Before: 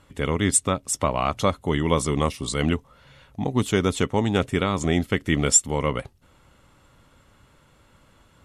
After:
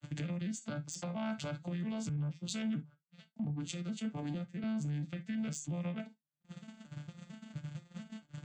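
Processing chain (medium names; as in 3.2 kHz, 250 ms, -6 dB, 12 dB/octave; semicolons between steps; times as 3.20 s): vocoder on a broken chord minor triad, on D3, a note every 228 ms; upward compressor, threshold -31 dBFS; gate -43 dBFS, range -49 dB; fifteen-band graphic EQ 160 Hz +8 dB, 400 Hz -9 dB, 1 kHz -9 dB; compression 6:1, threshold -32 dBFS, peak gain reduction 18 dB; treble shelf 2.1 kHz +10.5 dB; gated-style reverb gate 90 ms falling, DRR 8 dB; saturation -22 dBFS, distortion -21 dB; peak limiter -31 dBFS, peak gain reduction 9 dB; 2.09–4.64 s: three bands expanded up and down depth 100%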